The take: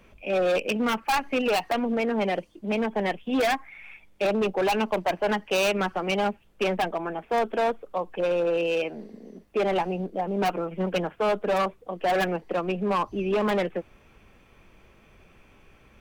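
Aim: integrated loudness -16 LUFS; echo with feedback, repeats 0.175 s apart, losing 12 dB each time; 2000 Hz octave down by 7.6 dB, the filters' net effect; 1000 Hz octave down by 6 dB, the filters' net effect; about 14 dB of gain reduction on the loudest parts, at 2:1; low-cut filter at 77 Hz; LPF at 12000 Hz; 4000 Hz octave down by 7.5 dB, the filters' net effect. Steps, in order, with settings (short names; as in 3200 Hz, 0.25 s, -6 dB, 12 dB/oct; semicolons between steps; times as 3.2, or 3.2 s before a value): HPF 77 Hz; LPF 12000 Hz; bell 1000 Hz -7.5 dB; bell 2000 Hz -5.5 dB; bell 4000 Hz -7.5 dB; compressor 2:1, threshold -50 dBFS; feedback echo 0.175 s, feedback 25%, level -12 dB; gain +26.5 dB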